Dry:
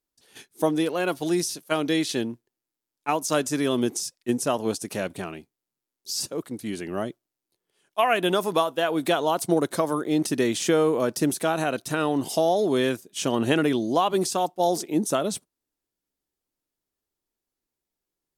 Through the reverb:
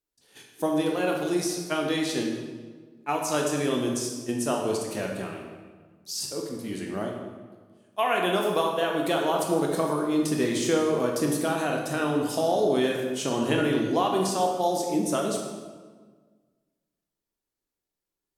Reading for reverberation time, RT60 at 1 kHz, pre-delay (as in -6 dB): 1.5 s, 1.4 s, 16 ms